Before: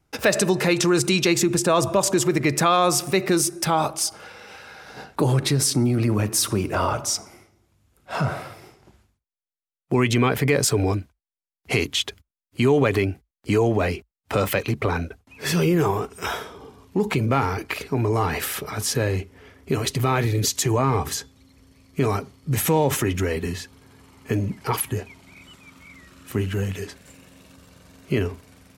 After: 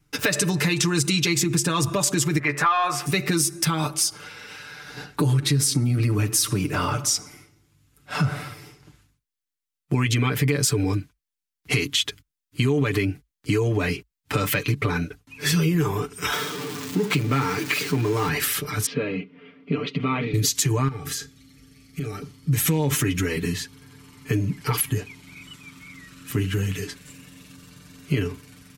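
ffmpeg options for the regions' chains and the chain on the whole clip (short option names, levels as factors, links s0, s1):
-filter_complex "[0:a]asettb=1/sr,asplit=3[s0][s1][s2];[s0]atrim=end=2.394[s3];[s1]atrim=start=2.39:end=3.06,asetpts=PTS-STARTPTS,afade=t=in:d=0.004:c=qsin,afade=t=out:st=0.666:d=0.004:c=qsin,acrossover=split=560 2200:gain=0.112 1 0.1[s4][s5][s6];[s4][s5][s6]amix=inputs=3:normalize=0,asplit=2[s7][s8];[s8]adelay=14,volume=0.531[s9];[s7][s9]amix=inputs=2:normalize=0,atrim=end_sample=29547,acontrast=55[s10];[s2]atrim=start=3.056[s11];[s3][s10]acrossfade=d=0.004:c1=hsin:c2=qsin[s12];[s12][s11]acrossfade=d=0.004:c1=qsin:c2=hsin,asettb=1/sr,asplit=3[s13][s14][s15];[s13]atrim=end=16.324[s16];[s14]atrim=start=16.32:end=18.29,asetpts=PTS-STARTPTS,afade=t=in:d=0.004:c=qsin,afade=t=out:st=1.966:d=0.004:c=qsin,aeval=exprs='val(0)+0.5*0.0355*sgn(val(0))':c=same,highpass=f=130:w=0.5412,highpass=f=130:w=1.3066,equalizer=f=11000:w=2.2:g=-4.5[s17];[s15]atrim=start=18.286[s18];[s16][s17]acrossfade=d=0.004:c1=hsin:c2=qsin[s19];[s19][s18]acrossfade=d=0.004:c1=qsin:c2=hsin,asettb=1/sr,asplit=3[s20][s21][s22];[s20]atrim=end=18.864[s23];[s21]atrim=start=18.86:end=20.34,asetpts=PTS-STARTPTS,afade=t=in:d=0.004:c=qsin,afade=t=out:st=1.476:d=0.004:c=qsin,highpass=f=160:w=0.5412,highpass=f=160:w=1.3066,equalizer=f=180:t=q:w=4:g=3,equalizer=f=360:t=q:w=4:g=-6,equalizer=f=590:t=q:w=4:g=6,equalizer=f=840:t=q:w=4:g=-8,equalizer=f=1700:t=q:w=4:g=-10,lowpass=f=2900:w=0.5412,lowpass=f=2900:w=1.3066,aecho=1:1:4.3:0.43,atrim=end_sample=65268[s24];[s22]atrim=start=20.336[s25];[s23][s24]acrossfade=d=0.004:c1=hsin:c2=qsin[s26];[s26][s25]acrossfade=d=0.004:c1=qsin:c2=hsin,asettb=1/sr,asplit=3[s27][s28][s29];[s27]atrim=end=20.884[s30];[s28]atrim=start=20.88:end=22.22,asetpts=PTS-STARTPTS,afade=t=in:d=0.004:c=qsin,afade=t=out:st=1.336:d=0.004:c=qsin,acompressor=threshold=0.0316:ratio=6:attack=3.2:release=140:knee=1:detection=peak,asuperstop=centerf=1000:order=12:qfactor=4.8,asplit=2[s31][s32];[s32]adelay=35,volume=0.266[s33];[s31][s33]amix=inputs=2:normalize=0,atrim=end_sample=59094[s34];[s29]atrim=start=22.216[s35];[s30][s34]acrossfade=d=0.004:c1=hsin:c2=qsin[s36];[s36][s35]acrossfade=d=0.004:c1=qsin:c2=hsin,equalizer=f=660:w=1.1:g=-12,aecho=1:1:6.8:0.73,acompressor=threshold=0.0794:ratio=3,volume=1.41"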